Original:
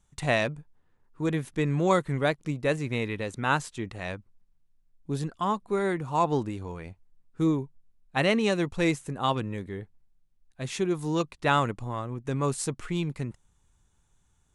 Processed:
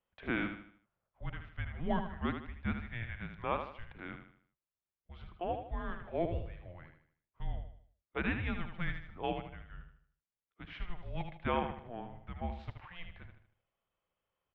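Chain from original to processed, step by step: mistuned SSB -350 Hz 300–3500 Hz; feedback delay 77 ms, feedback 40%, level -7.5 dB; trim -9 dB

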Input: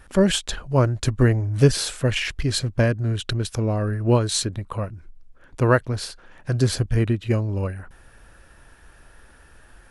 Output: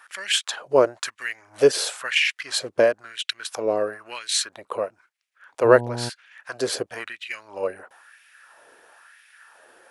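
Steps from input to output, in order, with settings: LFO high-pass sine 1 Hz 430–2300 Hz; 5.64–6.08 s: mains buzz 120 Hz, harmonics 8, -30 dBFS -4 dB/octave

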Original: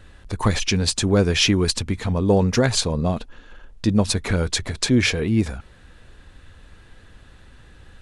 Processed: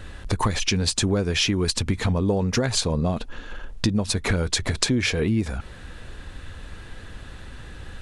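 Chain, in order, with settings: compression 10:1, threshold -27 dBFS, peak gain reduction 15.5 dB; trim +8 dB

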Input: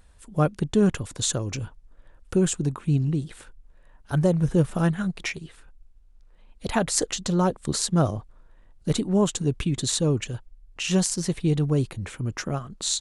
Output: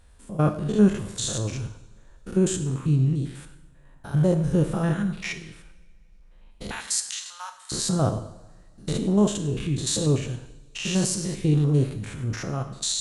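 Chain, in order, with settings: spectrogram pixelated in time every 100 ms; 6.71–7.72 s: Bessel high-pass 1.6 kHz, order 8; two-slope reverb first 0.79 s, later 3 s, from -25 dB, DRR 7 dB; trim +1.5 dB

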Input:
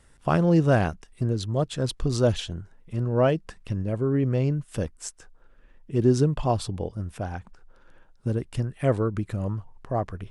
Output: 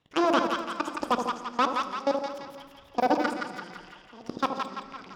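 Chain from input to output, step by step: rattle on loud lows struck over -36 dBFS, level -30 dBFS; in parallel at -2 dB: compression 8:1, threshold -33 dBFS, peak gain reduction 18 dB; on the sum: saturation -20 dBFS, distortion -10 dB; level held to a coarse grid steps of 24 dB; low-pass that closes with the level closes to 2.3 kHz, closed at -27.5 dBFS; two-band feedback delay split 450 Hz, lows 148 ms, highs 339 ms, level -3.5 dB; level-controlled noise filter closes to 2 kHz, open at -23 dBFS; high-pass 170 Hz 6 dB/octave; on a send at -11 dB: reverberation RT60 2.3 s, pre-delay 6 ms; on the sum: dynamic bell 1 kHz, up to -5 dB, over -52 dBFS, Q 4.8; speed mistake 7.5 ips tape played at 15 ips; band-stop 4.2 kHz, Q 25; trim +4 dB

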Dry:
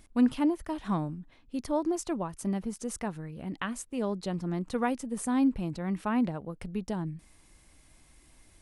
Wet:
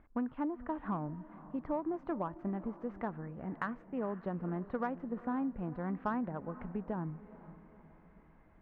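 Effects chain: compression 12:1, threshold -29 dBFS, peak gain reduction 11.5 dB; low-pass 1.6 kHz 24 dB/octave; tilt shelf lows -3.5 dB, about 740 Hz; echo that smears into a reverb 483 ms, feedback 48%, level -15.5 dB; Chebyshev shaper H 7 -36 dB, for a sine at -20 dBFS

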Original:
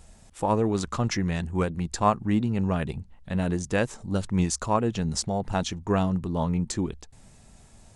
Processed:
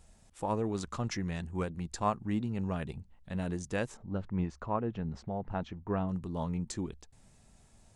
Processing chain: 3.97–6.09 s: low-pass 1.9 kHz 12 dB/octave; trim -8.5 dB

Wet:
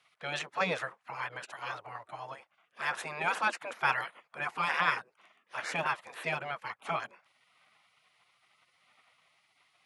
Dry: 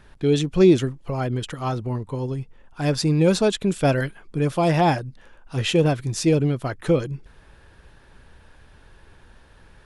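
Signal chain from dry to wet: high-pass 250 Hz 24 dB/octave; spectral gate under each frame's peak -15 dB weak; three-band isolator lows -13 dB, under 580 Hz, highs -18 dB, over 2.3 kHz; trim +7 dB

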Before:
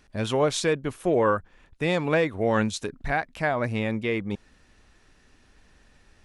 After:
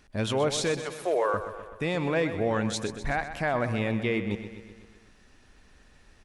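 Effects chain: 0.82–1.34 s: high-pass 450 Hz 24 dB/octave; peak limiter -17.5 dBFS, peak gain reduction 7 dB; on a send: feedback delay 126 ms, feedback 59%, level -11 dB

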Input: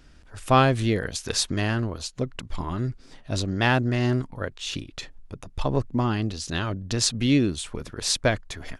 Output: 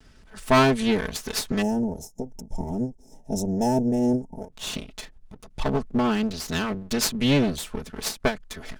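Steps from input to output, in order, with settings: comb filter that takes the minimum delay 4.6 ms; time-frequency box 1.62–4.51 s, 930–5100 Hz -24 dB; endings held to a fixed fall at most 210 dB/s; trim +1.5 dB

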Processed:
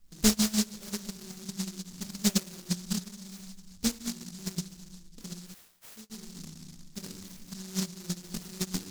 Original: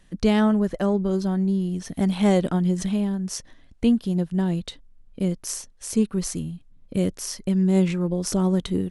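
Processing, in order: random holes in the spectrogram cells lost 22%; simulated room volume 290 m³, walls mixed, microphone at 1.6 m; low-pass that closes with the level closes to 1.4 kHz, closed at -11 dBFS; compression 4:1, threshold -30 dBFS, peak gain reduction 19.5 dB; bass shelf 86 Hz +3.5 dB; tape echo 71 ms, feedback 61%, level -15 dB, low-pass 2.8 kHz; gate -25 dBFS, range -23 dB; 5.54–6.10 s: pre-emphasis filter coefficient 0.97; delay time shaken by noise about 5.5 kHz, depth 0.42 ms; trim +9 dB

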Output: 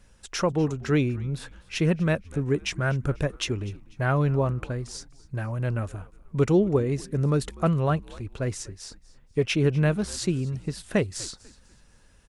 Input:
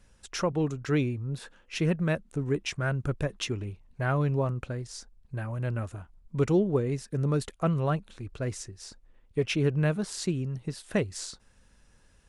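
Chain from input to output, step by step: frequency-shifting echo 246 ms, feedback 36%, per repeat -87 Hz, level -21 dB; trim +3.5 dB

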